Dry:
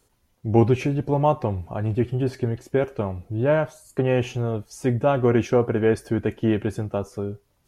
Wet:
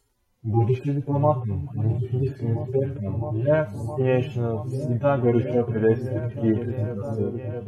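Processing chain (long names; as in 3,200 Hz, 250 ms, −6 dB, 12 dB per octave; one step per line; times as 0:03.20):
harmonic-percussive split with one part muted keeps harmonic
echo whose low-pass opens from repeat to repeat 662 ms, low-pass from 200 Hz, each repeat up 1 octave, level −6 dB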